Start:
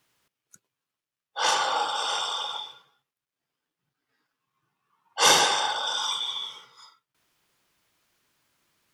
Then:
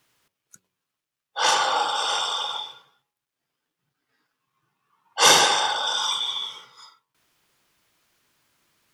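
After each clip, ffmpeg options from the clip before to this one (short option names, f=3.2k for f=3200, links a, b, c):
-af "bandreject=f=92.62:t=h:w=4,bandreject=f=185.24:t=h:w=4,bandreject=f=277.86:t=h:w=4,bandreject=f=370.48:t=h:w=4,bandreject=f=463.1:t=h:w=4,bandreject=f=555.72:t=h:w=4,bandreject=f=648.34:t=h:w=4,bandreject=f=740.96:t=h:w=4,bandreject=f=833.58:t=h:w=4,bandreject=f=926.2:t=h:w=4,bandreject=f=1.01882k:t=h:w=4,bandreject=f=1.11144k:t=h:w=4,volume=3.5dB"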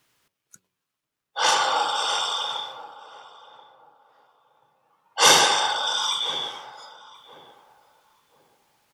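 -filter_complex "[0:a]asplit=2[a][b];[b]adelay=1033,lowpass=f=1k:p=1,volume=-14.5dB,asplit=2[c][d];[d]adelay=1033,lowpass=f=1k:p=1,volume=0.28,asplit=2[e][f];[f]adelay=1033,lowpass=f=1k:p=1,volume=0.28[g];[a][c][e][g]amix=inputs=4:normalize=0"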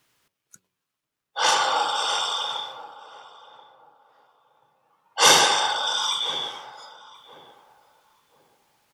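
-af anull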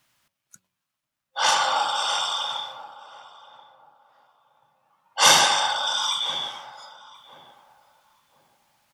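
-af "superequalizer=6b=0.562:7b=0.316"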